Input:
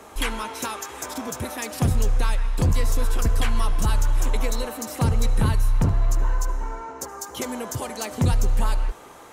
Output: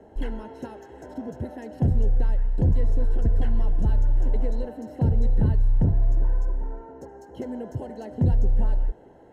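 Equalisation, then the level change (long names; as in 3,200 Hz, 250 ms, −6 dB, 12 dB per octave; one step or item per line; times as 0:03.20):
moving average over 37 samples
0.0 dB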